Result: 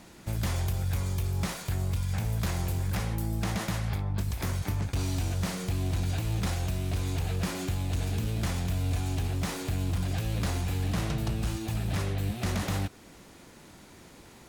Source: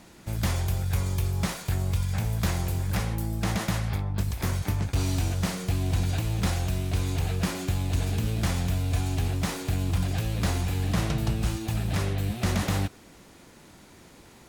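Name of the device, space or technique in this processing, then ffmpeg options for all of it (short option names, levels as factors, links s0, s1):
limiter into clipper: -af "alimiter=limit=0.0891:level=0:latency=1:release=215,asoftclip=type=hard:threshold=0.0668"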